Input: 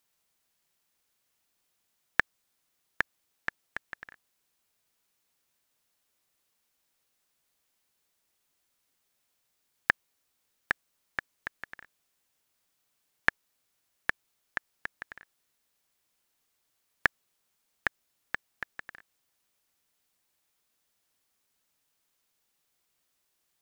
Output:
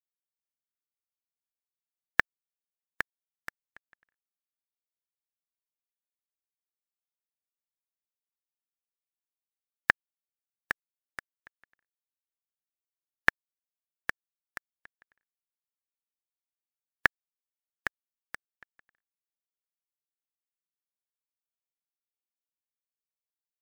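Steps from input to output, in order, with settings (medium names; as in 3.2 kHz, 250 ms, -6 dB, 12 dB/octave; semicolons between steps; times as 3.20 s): expander on every frequency bin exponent 2; in parallel at -4.5 dB: bit crusher 5-bit; on the sum: trim -1 dB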